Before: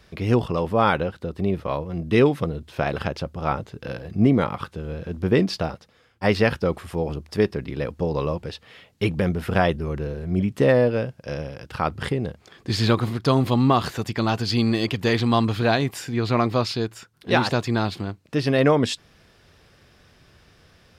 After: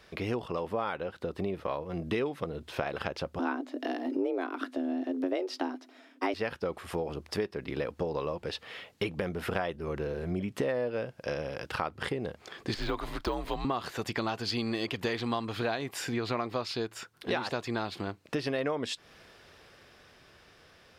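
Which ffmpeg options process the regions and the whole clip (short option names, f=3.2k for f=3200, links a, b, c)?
-filter_complex "[0:a]asettb=1/sr,asplit=3[a][b][c];[a]atrim=end=3.394[d];[b]atrim=start=3.39:end=6.34,asetpts=PTS-STARTPTS,afade=t=in:d=0.004:c=qsin,afade=t=out:st=2.946:d=0.004:c=qsin,equalizer=f=75:t=o:w=1.1:g=14.5,afreqshift=180[e];[c]atrim=start=6.336[f];[d][e]acrossfade=d=0.004:c1=hsin:c2=qsin[g];[g][f]acrossfade=d=0.004:c1=qsin:c2=hsin,asettb=1/sr,asplit=3[h][i][j];[h]atrim=end=12.744[k];[i]atrim=start=12.74:end=13.65,asetpts=PTS-STARTPTS,afade=t=in:d=0.004:c=qsin,afade=t=out:st=0.906:d=0.004:c=qsin,deesser=0.9,afreqshift=-83,equalizer=f=170:t=o:w=0.45:g=-14[l];[j]atrim=start=13.646[m];[k][l]acrossfade=d=0.004:c1=hsin:c2=qsin[n];[n][m]acrossfade=d=0.004:c1=qsin:c2=hsin,dynaudnorm=f=200:g=17:m=6.5dB,bass=f=250:g=-10,treble=f=4k:g=-3,acompressor=threshold=-30dB:ratio=5"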